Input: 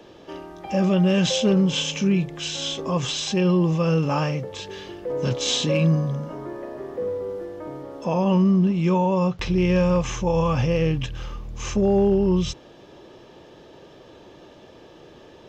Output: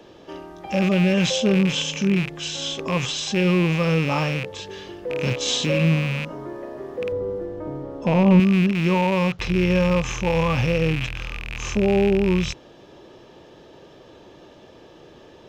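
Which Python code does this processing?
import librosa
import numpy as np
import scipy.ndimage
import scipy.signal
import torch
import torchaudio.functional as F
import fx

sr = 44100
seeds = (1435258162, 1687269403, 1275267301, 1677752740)

y = fx.rattle_buzz(x, sr, strikes_db=-33.0, level_db=-18.0)
y = fx.tilt_eq(y, sr, slope=-2.5, at=(7.12, 8.4))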